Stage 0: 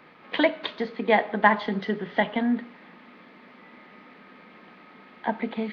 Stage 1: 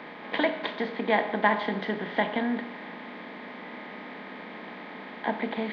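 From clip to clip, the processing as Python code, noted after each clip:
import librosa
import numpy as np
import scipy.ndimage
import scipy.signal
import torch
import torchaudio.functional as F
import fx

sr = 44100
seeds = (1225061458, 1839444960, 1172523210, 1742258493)

y = fx.bin_compress(x, sr, power=0.6)
y = F.gain(torch.from_numpy(y), -6.0).numpy()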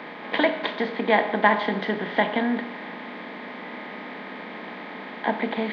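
y = fx.low_shelf(x, sr, hz=73.0, db=-8.5)
y = F.gain(torch.from_numpy(y), 4.5).numpy()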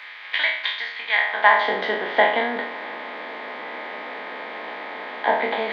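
y = fx.spec_trails(x, sr, decay_s=0.6)
y = fx.filter_sweep_highpass(y, sr, from_hz=2000.0, to_hz=490.0, start_s=1.1, end_s=1.75, q=0.94)
y = F.gain(torch.from_numpy(y), 2.5).numpy()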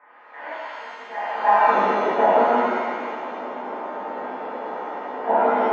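y = scipy.signal.sosfilt(scipy.signal.butter(4, 1100.0, 'lowpass', fs=sr, output='sos'), x)
y = fx.rev_shimmer(y, sr, seeds[0], rt60_s=1.6, semitones=7, shimmer_db=-8, drr_db=-10.0)
y = F.gain(torch.from_numpy(y), -6.0).numpy()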